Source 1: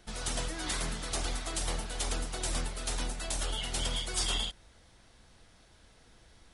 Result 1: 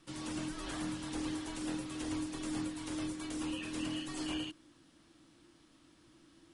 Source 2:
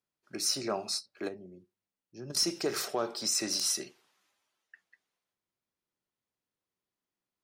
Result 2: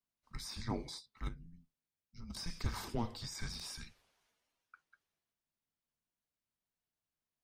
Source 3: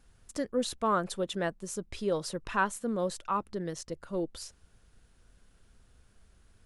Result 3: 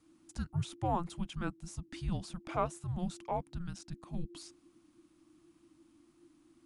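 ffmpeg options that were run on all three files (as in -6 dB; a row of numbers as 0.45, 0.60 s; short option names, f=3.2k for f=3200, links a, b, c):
-filter_complex "[0:a]acrossover=split=2500[a][b];[b]acompressor=threshold=-41dB:ratio=4:attack=1:release=60[c];[a][c]amix=inputs=2:normalize=0,afreqshift=-350,volume=-4.5dB"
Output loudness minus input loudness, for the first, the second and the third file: -5.5, -12.0, -6.0 LU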